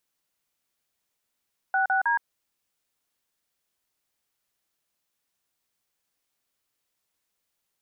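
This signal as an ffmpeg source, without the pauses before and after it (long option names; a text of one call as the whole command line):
ffmpeg -f lavfi -i "aevalsrc='0.0708*clip(min(mod(t,0.158),0.118-mod(t,0.158))/0.002,0,1)*(eq(floor(t/0.158),0)*(sin(2*PI*770*mod(t,0.158))+sin(2*PI*1477*mod(t,0.158)))+eq(floor(t/0.158),1)*(sin(2*PI*770*mod(t,0.158))+sin(2*PI*1477*mod(t,0.158)))+eq(floor(t/0.158),2)*(sin(2*PI*941*mod(t,0.158))+sin(2*PI*1633*mod(t,0.158))))':duration=0.474:sample_rate=44100" out.wav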